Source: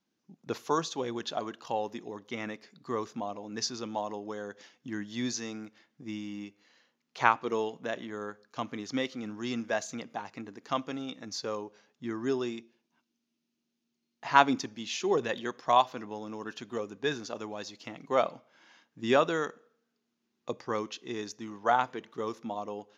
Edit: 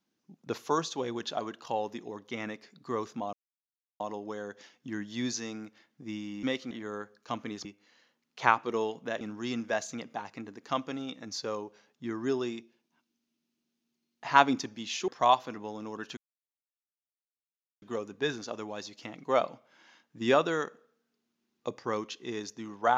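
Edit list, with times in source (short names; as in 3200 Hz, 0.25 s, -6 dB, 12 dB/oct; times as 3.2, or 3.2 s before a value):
3.33–4 mute
6.43–7.99 swap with 8.93–9.21
15.08–15.55 cut
16.64 insert silence 1.65 s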